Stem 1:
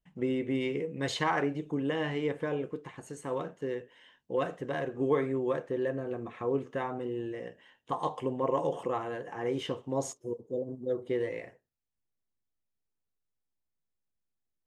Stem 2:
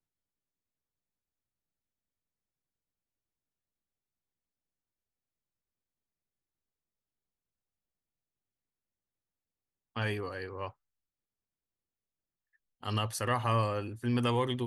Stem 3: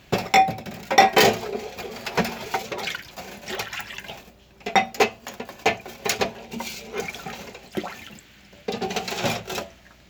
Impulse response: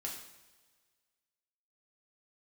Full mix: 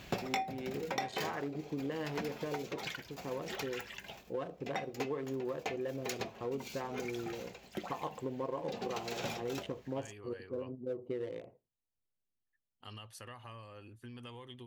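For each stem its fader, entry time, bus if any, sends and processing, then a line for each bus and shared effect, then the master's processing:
-3.5 dB, 0.00 s, no send, local Wiener filter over 25 samples
-11.5 dB, 0.00 s, no send, compression 6:1, threshold -35 dBFS, peak gain reduction 11.5 dB; peaking EQ 3 kHz +6 dB 0.77 oct
+1.0 dB, 0.00 s, no send, level rider gain up to 7 dB; auto duck -19 dB, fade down 1.50 s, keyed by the first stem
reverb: none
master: compression 5:1, threshold -34 dBFS, peak gain reduction 17 dB

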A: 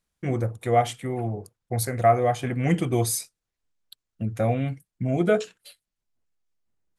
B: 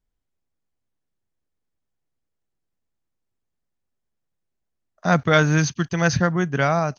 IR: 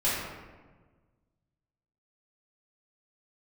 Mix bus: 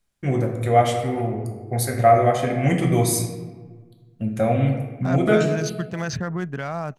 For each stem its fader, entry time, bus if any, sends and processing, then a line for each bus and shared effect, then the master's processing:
0.0 dB, 0.00 s, send -10.5 dB, endings held to a fixed fall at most 560 dB/s
-3.5 dB, 0.00 s, no send, local Wiener filter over 9 samples; peak limiter -15 dBFS, peak gain reduction 11 dB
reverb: on, RT60 1.4 s, pre-delay 3 ms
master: none

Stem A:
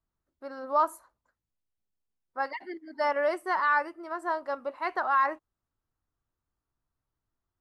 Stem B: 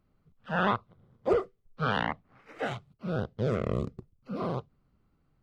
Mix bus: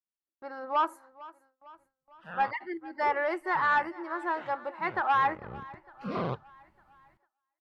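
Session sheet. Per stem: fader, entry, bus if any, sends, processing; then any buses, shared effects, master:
-8.0 dB, 0.00 s, no send, echo send -20 dB, peaking EQ 500 Hz +4.5 dB 0.2 oct; small resonant body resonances 210/330/820 Hz, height 12 dB, ringing for 45 ms; overdrive pedal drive 9 dB, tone 2.2 kHz, clips at -11 dBFS
-0.5 dB, 1.75 s, no send, no echo send, low-pass that closes with the level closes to 2.3 kHz, closed at -24.5 dBFS; auto duck -17 dB, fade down 0.90 s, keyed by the first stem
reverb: none
echo: feedback delay 452 ms, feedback 55%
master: treble shelf 4.5 kHz +6 dB; gate with hold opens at -58 dBFS; peaking EQ 2 kHz +7.5 dB 1.3 oct

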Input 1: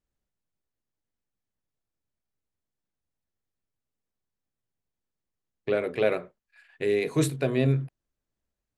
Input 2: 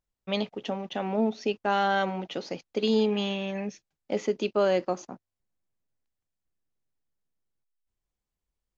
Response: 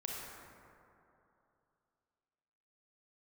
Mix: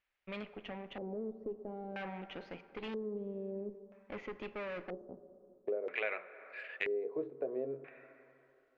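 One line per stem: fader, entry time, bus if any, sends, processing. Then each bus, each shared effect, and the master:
+1.5 dB, 0.00 s, send -19 dB, low-pass that closes with the level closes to 2.3 kHz, closed at -25 dBFS; high-pass 680 Hz 12 dB/octave; treble shelf 3.1 kHz +11.5 dB
-9.5 dB, 0.00 s, send -10.5 dB, valve stage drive 31 dB, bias 0.7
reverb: on, RT60 2.9 s, pre-delay 28 ms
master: LFO low-pass square 0.51 Hz 460–2300 Hz; compression 3:1, threshold -37 dBFS, peak gain reduction 14.5 dB

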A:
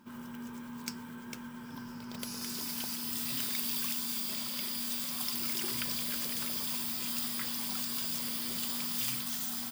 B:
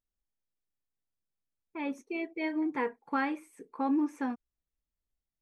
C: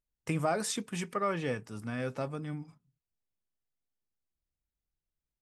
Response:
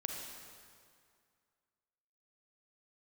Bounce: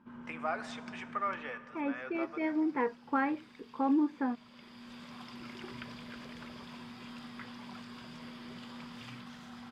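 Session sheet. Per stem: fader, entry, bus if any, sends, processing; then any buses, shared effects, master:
-3.0 dB, 0.00 s, no send, auto duck -10 dB, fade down 0.40 s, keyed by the second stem
+0.5 dB, 0.00 s, no send, none
-0.5 dB, 0.00 s, send -9 dB, high-pass 1 kHz 12 dB/octave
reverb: on, RT60 2.2 s, pre-delay 33 ms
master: low-pass 2.1 kHz 12 dB/octave

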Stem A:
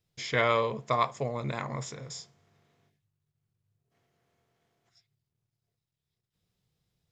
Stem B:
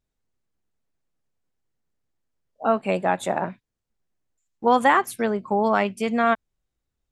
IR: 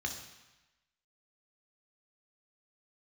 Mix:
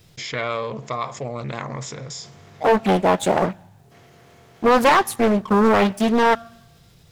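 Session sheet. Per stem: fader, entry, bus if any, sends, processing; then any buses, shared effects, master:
-1.5 dB, 0.00 s, no send, level flattener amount 50%
-3.0 dB, 0.00 s, send -21.5 dB, waveshaping leveller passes 3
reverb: on, RT60 1.0 s, pre-delay 3 ms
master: loudspeaker Doppler distortion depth 0.74 ms

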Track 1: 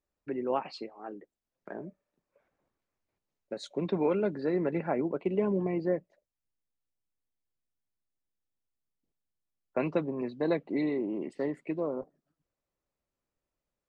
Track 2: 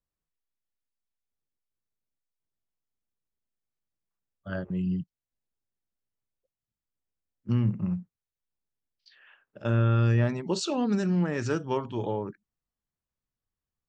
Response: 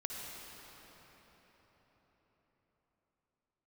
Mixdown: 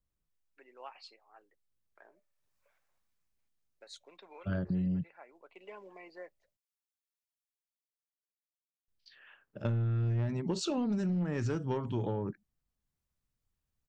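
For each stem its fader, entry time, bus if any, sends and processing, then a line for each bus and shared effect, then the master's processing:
2.12 s -13.5 dB -> 2.59 s -1 dB -> 5.00 s -1 dB -> 5.31 s -9.5 dB, 0.30 s, no send, high-pass 810 Hz 12 dB/octave; treble shelf 2.4 kHz +9 dB; auto duck -16 dB, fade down 1.75 s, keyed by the second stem
-1.5 dB, 0.00 s, muted 6.57–8.88 s, no send, bass shelf 250 Hz +9.5 dB; saturation -15.5 dBFS, distortion -14 dB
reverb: none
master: compression 12:1, threshold -29 dBFS, peak gain reduction 10 dB

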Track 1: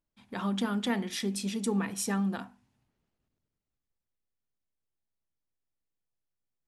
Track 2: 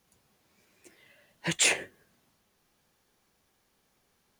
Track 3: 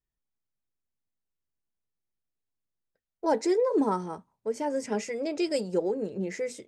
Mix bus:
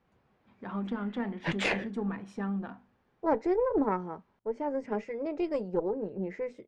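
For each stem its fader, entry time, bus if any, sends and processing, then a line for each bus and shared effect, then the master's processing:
-3.5 dB, 0.30 s, no send, none
+2.0 dB, 0.00 s, no send, none
-3.0 dB, 0.00 s, no send, none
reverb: none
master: low-pass 1.8 kHz 12 dB/octave; Chebyshev shaper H 2 -10 dB, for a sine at -16 dBFS

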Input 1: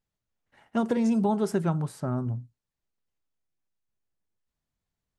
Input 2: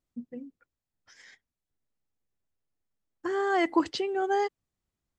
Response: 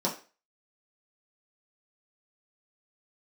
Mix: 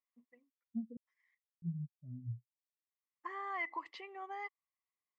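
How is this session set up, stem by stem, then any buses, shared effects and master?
-4.0 dB, 0.00 s, muted 0.97–1.62 s, no send, compression 5:1, threshold -26 dBFS, peak gain reduction 6 dB; spectral contrast expander 4:1
+0.5 dB, 0.00 s, no send, compression, threshold -26 dBFS, peak gain reduction 8.5 dB; two resonant band-passes 1.5 kHz, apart 0.85 oct; auto duck -20 dB, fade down 0.50 s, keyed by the first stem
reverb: none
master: none

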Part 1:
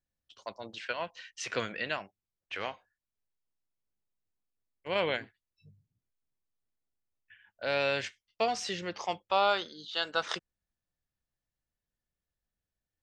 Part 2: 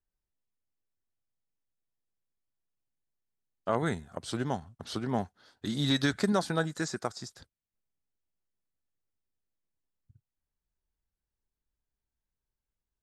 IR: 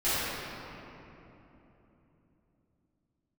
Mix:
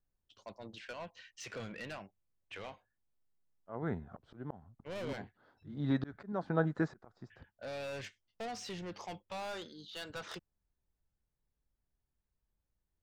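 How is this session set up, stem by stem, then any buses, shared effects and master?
-7.5 dB, 0.00 s, no send, bass shelf 350 Hz +11 dB; saturation -30.5 dBFS, distortion -5 dB
+1.5 dB, 0.00 s, no send, low-pass 1.3 kHz 12 dB/octave; slow attack 455 ms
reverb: none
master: none

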